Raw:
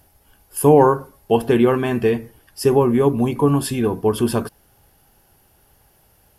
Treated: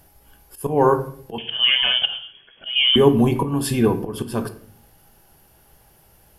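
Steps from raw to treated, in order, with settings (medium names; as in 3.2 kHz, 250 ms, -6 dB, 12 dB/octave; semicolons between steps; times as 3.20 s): 1.38–2.96 s: frequency inversion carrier 3.3 kHz; slow attack 278 ms; reverberation RT60 0.60 s, pre-delay 5 ms, DRR 8.5 dB; trim +1.5 dB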